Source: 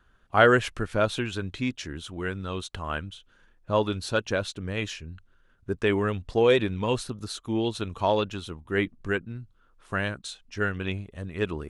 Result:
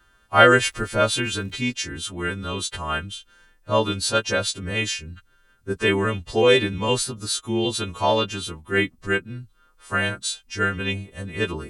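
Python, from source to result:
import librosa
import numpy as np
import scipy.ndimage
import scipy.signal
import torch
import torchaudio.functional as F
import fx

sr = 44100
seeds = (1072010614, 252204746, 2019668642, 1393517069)

y = fx.freq_snap(x, sr, grid_st=2)
y = fx.dmg_crackle(y, sr, seeds[0], per_s=370.0, level_db=-49.0, at=(0.66, 1.61), fade=0.02)
y = F.gain(torch.from_numpy(y), 3.5).numpy()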